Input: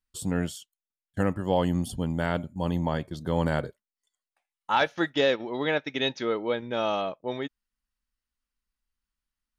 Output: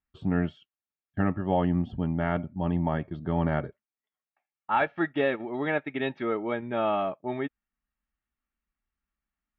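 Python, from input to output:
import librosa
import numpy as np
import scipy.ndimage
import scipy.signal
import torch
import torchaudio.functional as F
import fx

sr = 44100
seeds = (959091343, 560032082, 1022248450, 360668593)

p1 = scipy.signal.sosfilt(scipy.signal.butter(4, 2500.0, 'lowpass', fs=sr, output='sos'), x)
p2 = fx.rider(p1, sr, range_db=4, speed_s=2.0)
p3 = p1 + (p2 * librosa.db_to_amplitude(2.5))
p4 = fx.notch_comb(p3, sr, f0_hz=500.0)
y = p4 * librosa.db_to_amplitude(-6.5)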